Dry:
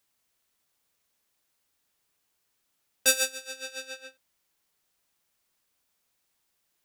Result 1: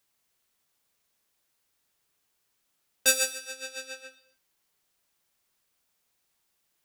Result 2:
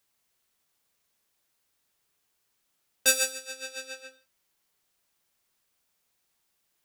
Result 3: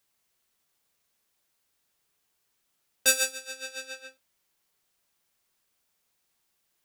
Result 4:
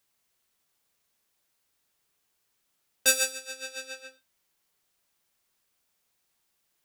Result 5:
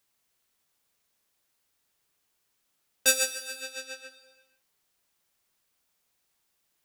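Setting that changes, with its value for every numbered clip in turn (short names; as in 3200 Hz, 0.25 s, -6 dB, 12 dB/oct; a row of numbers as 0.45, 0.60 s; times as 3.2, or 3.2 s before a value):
non-linear reverb, gate: 300, 200, 90, 140, 540 ms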